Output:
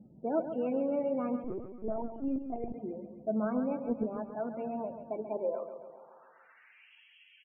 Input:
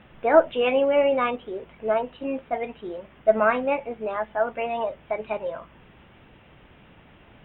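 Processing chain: band-pass sweep 210 Hz -> 2.9 kHz, 4.98–6.97 s; in parallel at +2 dB: peak limiter -31.5 dBFS, peak gain reduction 11.5 dB; 3.42–4.04 s: on the sum: transient shaper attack +11 dB, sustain -1 dB; loudest bins only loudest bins 32; dynamic bell 1.1 kHz, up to +3 dB, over -44 dBFS, Q 0.82; feedback delay 136 ms, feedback 56%, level -9.5 dB; 1.44–2.74 s: LPC vocoder at 8 kHz pitch kept; trim -4 dB

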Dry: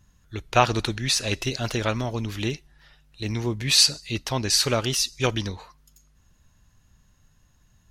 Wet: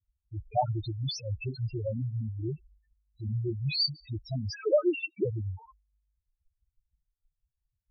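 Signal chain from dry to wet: 4.53–5.25 s: formants replaced by sine waves; loudest bins only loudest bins 2; expander -51 dBFS

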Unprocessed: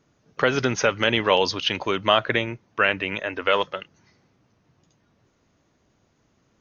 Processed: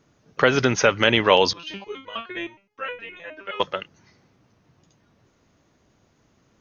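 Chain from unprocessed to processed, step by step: 1.53–3.60 s: resonator arpeggio 9.6 Hz 170–490 Hz; trim +3 dB

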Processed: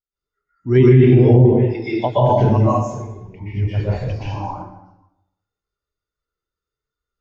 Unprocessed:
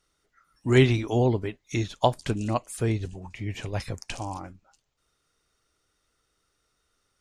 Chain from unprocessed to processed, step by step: knee-point frequency compression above 3.4 kHz 1.5:1; 1.42–1.95 s: high-pass 730 Hz -> 200 Hz 12 dB/octave; 2.64–3.29 s: compression 12:1, threshold -37 dBFS, peak gain reduction 16 dB; plate-style reverb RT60 1.3 s, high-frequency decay 0.7×, pre-delay 110 ms, DRR -9 dB; loudness maximiser +8 dB; spectral contrast expander 1.5:1; trim -1 dB

